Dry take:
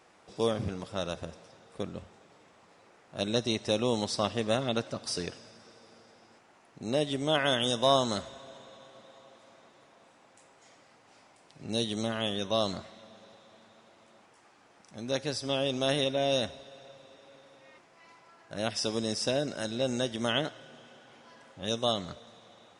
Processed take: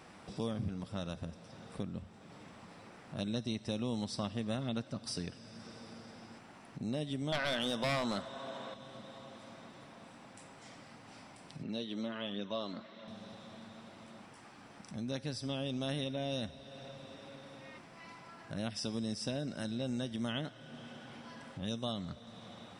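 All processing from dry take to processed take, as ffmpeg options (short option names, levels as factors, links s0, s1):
-filter_complex "[0:a]asettb=1/sr,asplit=3[s0][s1][s2];[s0]atrim=end=7.324[s3];[s1]atrim=start=7.32:end=8.74,asetpts=PTS-STARTPTS,afade=t=in:d=0.004:c=qsin,afade=t=out:st=1.416:d=0.004:c=qsin,highpass=f=830:p=1,highshelf=f=2300:g=-11.5,aeval=exprs='0.178*sin(PI/2*3.55*val(0)/0.178)':c=same[s4];[s2]atrim=start=8.736[s5];[s3][s4]acrossfade=d=0.004:c1=hsin:c2=qsin[s6];[s6][s5]acrossfade=d=0.004:c1=qsin:c2=hsin,asettb=1/sr,asplit=3[s7][s8][s9];[s7]atrim=end=11.634[s10];[s8]atrim=start=11.63:end=13.08,asetpts=PTS-STARTPTS,afade=t=in:d=0.004:c=qsin,afade=t=out:st=1.446:d=0.004:c=qsin,bandreject=f=760:w=7.8,aphaser=in_gain=1:out_gain=1:delay=4:decay=0.32:speed=1.3:type=triangular,highpass=270,lowpass=3600[s11];[s9]atrim=start=13.076[s12];[s10][s11]acrossfade=d=0.004:c1=hsin:c2=qsin[s13];[s13][s12]acrossfade=d=0.004:c1=qsin:c2=hsin,lowshelf=f=300:t=q:w=1.5:g=6.5,bandreject=f=6700:w=7.3,acompressor=threshold=0.00251:ratio=2,volume=1.78"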